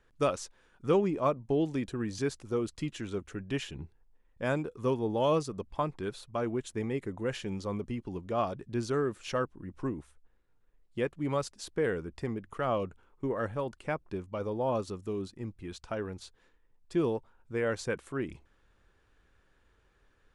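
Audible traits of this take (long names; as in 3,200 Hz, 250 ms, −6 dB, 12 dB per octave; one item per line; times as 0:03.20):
background noise floor −68 dBFS
spectral slope −6.0 dB per octave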